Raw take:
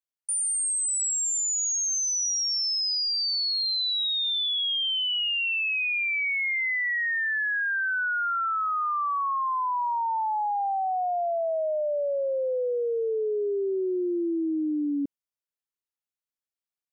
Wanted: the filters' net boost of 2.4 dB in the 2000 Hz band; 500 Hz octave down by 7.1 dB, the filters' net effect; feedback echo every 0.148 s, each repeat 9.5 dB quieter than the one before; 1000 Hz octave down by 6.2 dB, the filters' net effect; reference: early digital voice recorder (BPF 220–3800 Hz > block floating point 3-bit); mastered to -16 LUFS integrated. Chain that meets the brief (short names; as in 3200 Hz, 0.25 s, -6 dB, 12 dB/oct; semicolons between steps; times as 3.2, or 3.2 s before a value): BPF 220–3800 Hz; bell 500 Hz -7 dB; bell 1000 Hz -8 dB; bell 2000 Hz +6 dB; feedback echo 0.148 s, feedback 33%, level -9.5 dB; block floating point 3-bit; gain +10 dB